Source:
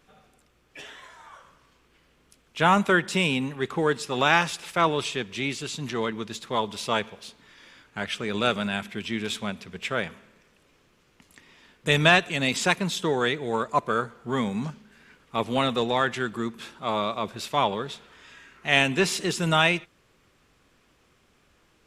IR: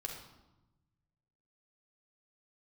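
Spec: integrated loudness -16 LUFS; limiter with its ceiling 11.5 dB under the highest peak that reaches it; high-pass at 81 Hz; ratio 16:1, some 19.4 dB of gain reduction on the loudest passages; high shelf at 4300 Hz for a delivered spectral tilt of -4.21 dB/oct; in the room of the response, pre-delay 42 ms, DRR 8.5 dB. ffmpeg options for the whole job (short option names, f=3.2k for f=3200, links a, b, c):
-filter_complex "[0:a]highpass=81,highshelf=f=4.3k:g=-5.5,acompressor=threshold=-34dB:ratio=16,alimiter=level_in=8dB:limit=-24dB:level=0:latency=1,volume=-8dB,asplit=2[a][b];[1:a]atrim=start_sample=2205,adelay=42[c];[b][c]afir=irnorm=-1:irlink=0,volume=-8dB[d];[a][d]amix=inputs=2:normalize=0,volume=26.5dB"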